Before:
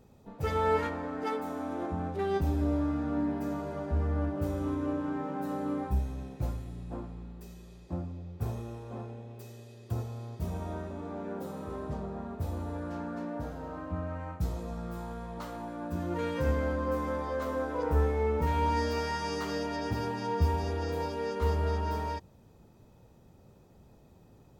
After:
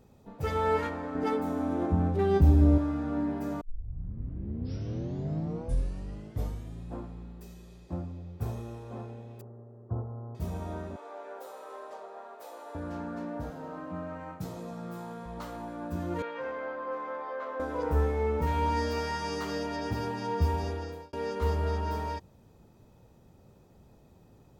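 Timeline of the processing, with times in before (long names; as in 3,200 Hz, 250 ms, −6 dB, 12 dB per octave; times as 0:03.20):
0:01.15–0:02.78: low-shelf EQ 340 Hz +11 dB
0:03.61: tape start 3.28 s
0:09.41–0:10.35: Butterworth low-pass 1,300 Hz
0:10.96–0:12.75: high-pass filter 490 Hz 24 dB per octave
0:13.50–0:15.26: high-pass filter 120 Hz 24 dB per octave
0:16.22–0:17.60: band-pass filter 570–2,400 Hz
0:20.65–0:21.13: fade out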